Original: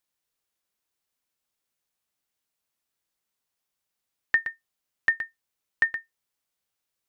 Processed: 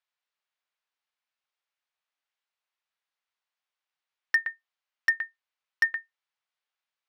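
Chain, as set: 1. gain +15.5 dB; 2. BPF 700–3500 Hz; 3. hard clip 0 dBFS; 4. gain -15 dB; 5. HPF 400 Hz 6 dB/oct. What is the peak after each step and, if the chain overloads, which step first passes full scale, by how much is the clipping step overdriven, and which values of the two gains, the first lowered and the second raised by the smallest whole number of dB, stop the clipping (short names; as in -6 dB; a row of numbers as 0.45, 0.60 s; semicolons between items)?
+5.0, +5.0, 0.0, -15.0, -13.5 dBFS; step 1, 5.0 dB; step 1 +10.5 dB, step 4 -10 dB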